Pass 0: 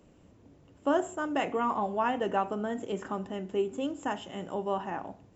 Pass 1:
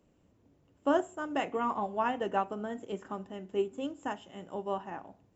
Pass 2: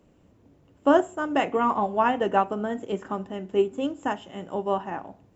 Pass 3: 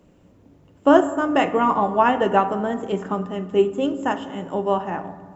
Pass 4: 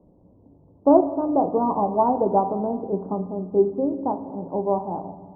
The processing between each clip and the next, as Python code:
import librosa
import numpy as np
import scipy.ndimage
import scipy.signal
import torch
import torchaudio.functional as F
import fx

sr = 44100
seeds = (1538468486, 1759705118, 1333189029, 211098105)

y1 = fx.upward_expand(x, sr, threshold_db=-41.0, expansion=1.5)
y2 = fx.high_shelf(y1, sr, hz=4500.0, db=-4.5)
y2 = y2 * librosa.db_to_amplitude(8.5)
y3 = fx.rev_fdn(y2, sr, rt60_s=1.7, lf_ratio=1.4, hf_ratio=0.35, size_ms=33.0, drr_db=10.5)
y3 = y3 * librosa.db_to_amplitude(4.5)
y4 = scipy.signal.sosfilt(scipy.signal.butter(8, 970.0, 'lowpass', fs=sr, output='sos'), y3)
y4 = y4 * librosa.db_to_amplitude(-1.0)